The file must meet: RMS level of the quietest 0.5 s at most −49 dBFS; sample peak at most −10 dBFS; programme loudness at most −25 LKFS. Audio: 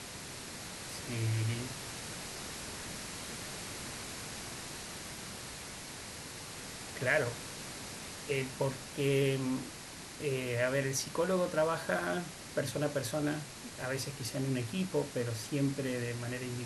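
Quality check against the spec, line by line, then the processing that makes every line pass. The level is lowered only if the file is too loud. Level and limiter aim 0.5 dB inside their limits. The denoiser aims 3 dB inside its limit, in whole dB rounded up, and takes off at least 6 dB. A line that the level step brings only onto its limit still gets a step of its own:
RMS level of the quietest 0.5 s −47 dBFS: out of spec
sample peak −16.5 dBFS: in spec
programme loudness −36.0 LKFS: in spec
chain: broadband denoise 6 dB, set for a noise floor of −47 dBFS

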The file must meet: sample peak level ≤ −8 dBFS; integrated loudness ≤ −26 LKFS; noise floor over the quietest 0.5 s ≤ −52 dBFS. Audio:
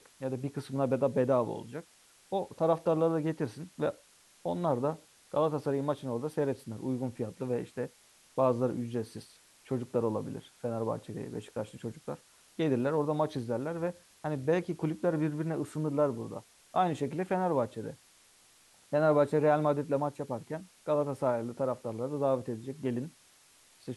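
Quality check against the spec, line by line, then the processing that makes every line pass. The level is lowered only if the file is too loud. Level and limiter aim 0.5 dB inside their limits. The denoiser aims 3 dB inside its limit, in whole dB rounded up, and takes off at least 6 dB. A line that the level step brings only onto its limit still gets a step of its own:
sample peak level −13.5 dBFS: in spec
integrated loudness −32.5 LKFS: in spec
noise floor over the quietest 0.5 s −62 dBFS: in spec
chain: no processing needed

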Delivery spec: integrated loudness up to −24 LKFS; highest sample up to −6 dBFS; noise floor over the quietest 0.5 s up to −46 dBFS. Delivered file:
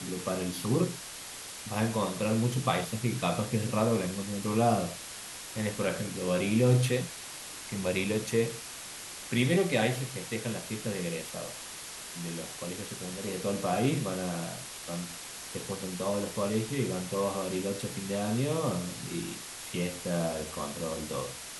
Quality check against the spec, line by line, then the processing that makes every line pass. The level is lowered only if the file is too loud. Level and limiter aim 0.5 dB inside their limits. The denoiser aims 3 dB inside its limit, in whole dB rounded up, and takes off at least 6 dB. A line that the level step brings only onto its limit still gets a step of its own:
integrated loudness −32.0 LKFS: in spec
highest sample −13.0 dBFS: in spec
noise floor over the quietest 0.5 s −43 dBFS: out of spec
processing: broadband denoise 6 dB, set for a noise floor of −43 dBFS

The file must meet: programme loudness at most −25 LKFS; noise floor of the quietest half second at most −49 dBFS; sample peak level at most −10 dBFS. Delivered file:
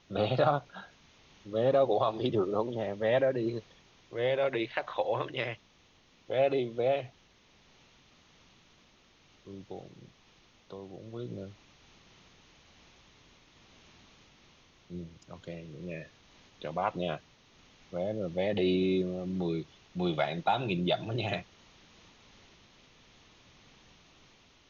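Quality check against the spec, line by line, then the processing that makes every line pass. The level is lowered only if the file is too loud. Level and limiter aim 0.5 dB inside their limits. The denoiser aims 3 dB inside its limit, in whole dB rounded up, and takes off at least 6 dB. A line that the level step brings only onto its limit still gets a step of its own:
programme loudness −31.5 LKFS: in spec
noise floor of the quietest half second −63 dBFS: in spec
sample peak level −14.5 dBFS: in spec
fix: no processing needed

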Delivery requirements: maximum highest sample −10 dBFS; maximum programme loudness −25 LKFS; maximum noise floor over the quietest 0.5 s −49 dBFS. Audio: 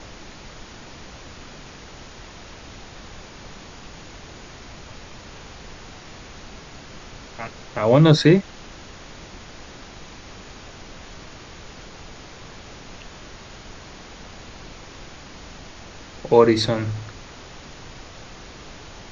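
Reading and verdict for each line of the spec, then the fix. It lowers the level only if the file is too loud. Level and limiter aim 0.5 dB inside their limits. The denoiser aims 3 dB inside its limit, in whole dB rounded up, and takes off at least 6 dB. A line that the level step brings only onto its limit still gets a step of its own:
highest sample −2.0 dBFS: out of spec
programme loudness −18.5 LKFS: out of spec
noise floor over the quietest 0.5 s −41 dBFS: out of spec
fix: broadband denoise 6 dB, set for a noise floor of −41 dBFS
level −7 dB
brickwall limiter −10.5 dBFS

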